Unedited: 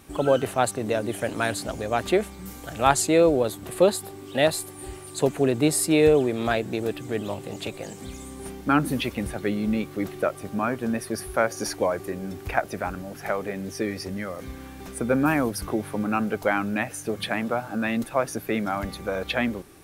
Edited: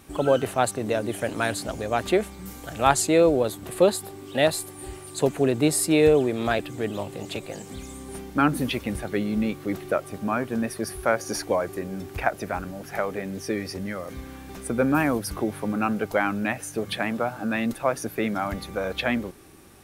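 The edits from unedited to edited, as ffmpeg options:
-filter_complex "[0:a]asplit=2[s0][s1];[s0]atrim=end=6.592[s2];[s1]atrim=start=6.898[s3];[s2][s3]acrossfade=d=0.004:c1=hsin:c2=hsin"

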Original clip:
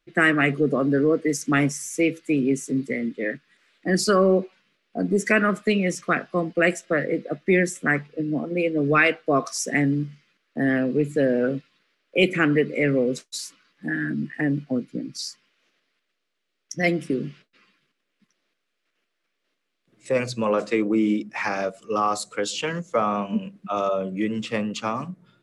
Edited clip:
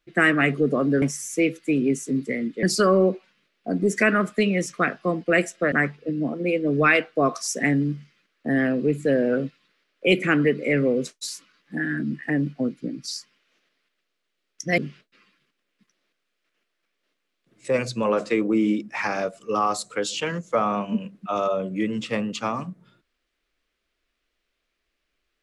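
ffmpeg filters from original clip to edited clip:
-filter_complex "[0:a]asplit=5[s0][s1][s2][s3][s4];[s0]atrim=end=1.022[s5];[s1]atrim=start=1.628:end=3.242[s6];[s2]atrim=start=3.918:end=7.012[s7];[s3]atrim=start=7.828:end=16.892[s8];[s4]atrim=start=17.188[s9];[s5][s6]acrossfade=d=0.004:c1=hsin:c2=hsin[s10];[s10][s7]acrossfade=d=0.004:c1=hsin:c2=hsin[s11];[s11][s8]acrossfade=d=0.004:c1=hsin:c2=hsin[s12];[s12][s9]acrossfade=d=0.004:c1=hsin:c2=hsin"

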